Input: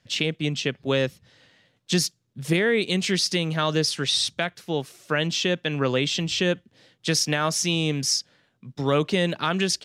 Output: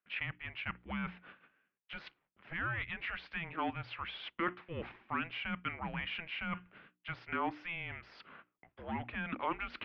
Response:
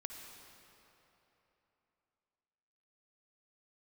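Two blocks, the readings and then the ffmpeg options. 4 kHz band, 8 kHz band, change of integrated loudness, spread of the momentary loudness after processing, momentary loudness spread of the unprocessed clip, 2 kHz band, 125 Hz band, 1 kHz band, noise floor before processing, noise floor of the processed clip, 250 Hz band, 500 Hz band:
-22.0 dB, under -40 dB, -15.5 dB, 12 LU, 8 LU, -10.0 dB, -19.0 dB, -7.5 dB, -69 dBFS, under -85 dBFS, -17.0 dB, -22.0 dB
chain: -af "aeval=exprs='(tanh(5.01*val(0)+0.1)-tanh(0.1))/5.01':c=same,agate=range=-22dB:threshold=-53dB:ratio=16:detection=peak,areverse,acompressor=threshold=-37dB:ratio=16,areverse,highpass=f=590:t=q:w=0.5412,highpass=f=590:t=q:w=1.307,lowpass=f=2.8k:t=q:w=0.5176,lowpass=f=2.8k:t=q:w=0.7071,lowpass=f=2.8k:t=q:w=1.932,afreqshift=-340,bandreject=f=60:t=h:w=6,bandreject=f=120:t=h:w=6,bandreject=f=180:t=h:w=6,bandreject=f=240:t=h:w=6,bandreject=f=300:t=h:w=6,bandreject=f=360:t=h:w=6,volume=9dB"

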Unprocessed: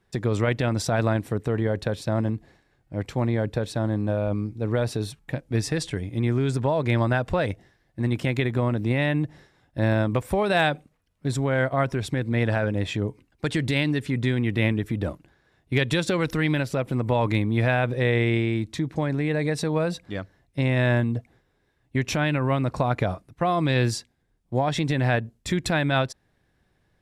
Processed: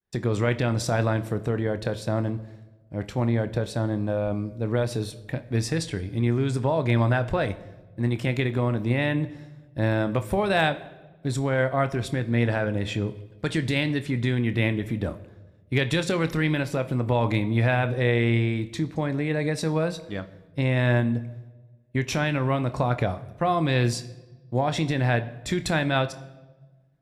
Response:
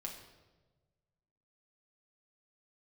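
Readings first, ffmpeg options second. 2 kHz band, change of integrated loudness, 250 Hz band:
-1.0 dB, -0.5 dB, -0.5 dB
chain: -filter_complex "[0:a]agate=range=-33dB:threshold=-57dB:ratio=3:detection=peak,asplit=2[a][b];[1:a]atrim=start_sample=2205,adelay=25[c];[b][c]afir=irnorm=-1:irlink=0,volume=-8.5dB[d];[a][d]amix=inputs=2:normalize=0,volume=-1dB"

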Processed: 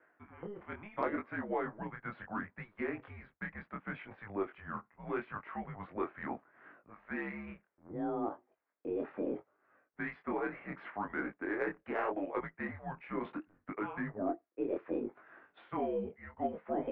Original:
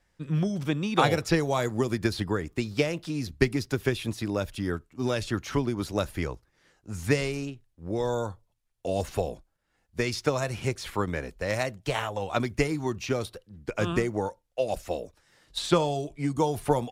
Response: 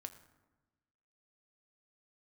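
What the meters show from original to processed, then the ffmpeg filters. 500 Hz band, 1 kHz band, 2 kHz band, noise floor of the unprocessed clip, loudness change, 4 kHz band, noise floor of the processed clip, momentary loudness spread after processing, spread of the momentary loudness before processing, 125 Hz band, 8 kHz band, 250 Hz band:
-10.5 dB, -8.0 dB, -8.0 dB, -73 dBFS, -10.5 dB, under -25 dB, -80 dBFS, 11 LU, 10 LU, -20.0 dB, under -40 dB, -10.0 dB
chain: -af "areverse,acompressor=threshold=-38dB:ratio=8,areverse,highpass=f=520:t=q:w=0.5412,highpass=f=520:t=q:w=1.307,lowpass=f=2.2k:t=q:w=0.5176,lowpass=f=2.2k:t=q:w=0.7071,lowpass=f=2.2k:t=q:w=1.932,afreqshift=-210,flanger=delay=19:depth=5.8:speed=0.72,aeval=exprs='0.0251*(cos(1*acos(clip(val(0)/0.0251,-1,1)))-cos(1*PI/2))+0.000282*(cos(6*acos(clip(val(0)/0.0251,-1,1)))-cos(6*PI/2))':c=same,volume=12dB"

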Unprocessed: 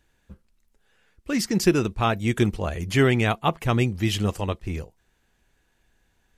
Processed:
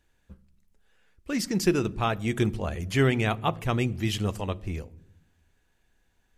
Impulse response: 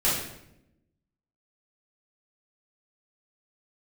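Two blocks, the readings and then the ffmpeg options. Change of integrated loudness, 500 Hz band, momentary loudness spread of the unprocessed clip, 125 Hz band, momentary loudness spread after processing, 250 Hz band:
-3.5 dB, -3.5 dB, 10 LU, -3.5 dB, 11 LU, -4.0 dB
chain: -filter_complex "[0:a]asplit=2[a][b];[1:a]atrim=start_sample=2205,lowshelf=f=460:g=11[c];[b][c]afir=irnorm=-1:irlink=0,volume=-35dB[d];[a][d]amix=inputs=2:normalize=0,volume=-4dB"

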